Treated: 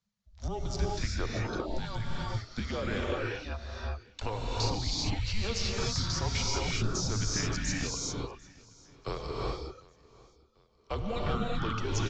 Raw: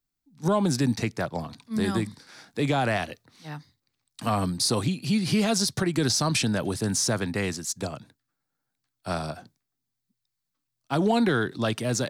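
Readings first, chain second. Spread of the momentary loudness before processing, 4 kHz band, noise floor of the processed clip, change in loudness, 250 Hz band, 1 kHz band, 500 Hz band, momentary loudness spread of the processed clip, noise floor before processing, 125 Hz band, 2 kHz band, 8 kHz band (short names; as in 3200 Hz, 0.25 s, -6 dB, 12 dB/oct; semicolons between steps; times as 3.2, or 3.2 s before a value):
14 LU, -4.0 dB, -64 dBFS, -7.5 dB, -11.5 dB, -6.5 dB, -7.5 dB, 9 LU, -83 dBFS, -4.0 dB, -6.0 dB, -6.5 dB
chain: reverb removal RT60 1.3 s; compressor 6:1, threshold -34 dBFS, peak gain reduction 14.5 dB; downsampling 16000 Hz; feedback echo 0.746 s, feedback 45%, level -23 dB; non-linear reverb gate 0.42 s rising, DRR -3.5 dB; frequency shift -220 Hz; gain +1.5 dB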